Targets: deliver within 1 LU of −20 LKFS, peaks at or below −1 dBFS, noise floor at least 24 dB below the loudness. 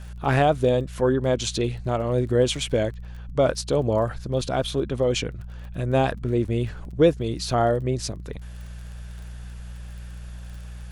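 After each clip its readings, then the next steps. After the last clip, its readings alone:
crackle rate 25 per second; mains hum 60 Hz; hum harmonics up to 180 Hz; level of the hum −34 dBFS; integrated loudness −24.0 LKFS; sample peak −6.0 dBFS; target loudness −20.0 LKFS
→ click removal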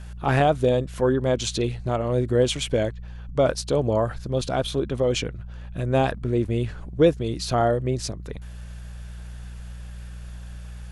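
crackle rate 0 per second; mains hum 60 Hz; hum harmonics up to 180 Hz; level of the hum −34 dBFS
→ hum removal 60 Hz, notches 3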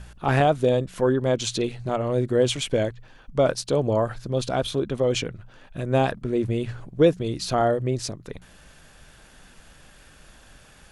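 mains hum none found; integrated loudness −24.0 LKFS; sample peak −6.5 dBFS; target loudness −20.0 LKFS
→ level +4 dB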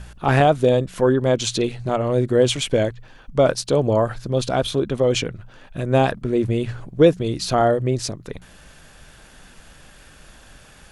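integrated loudness −20.0 LKFS; sample peak −2.5 dBFS; background noise floor −48 dBFS

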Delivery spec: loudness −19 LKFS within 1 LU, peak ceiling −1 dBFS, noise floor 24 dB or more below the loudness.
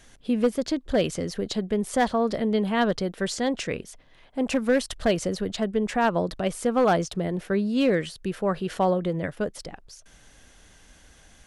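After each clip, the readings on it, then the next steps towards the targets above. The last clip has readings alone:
share of clipped samples 0.4%; peaks flattened at −14.0 dBFS; integrated loudness −26.0 LKFS; sample peak −14.0 dBFS; target loudness −19.0 LKFS
→ clipped peaks rebuilt −14 dBFS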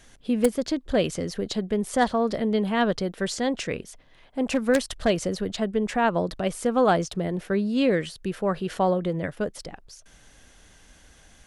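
share of clipped samples 0.0%; integrated loudness −25.5 LKFS; sample peak −5.0 dBFS; target loudness −19.0 LKFS
→ level +6.5 dB
brickwall limiter −1 dBFS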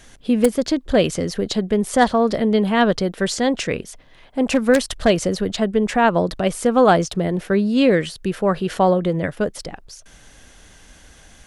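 integrated loudness −19.0 LKFS; sample peak −1.0 dBFS; background noise floor −48 dBFS

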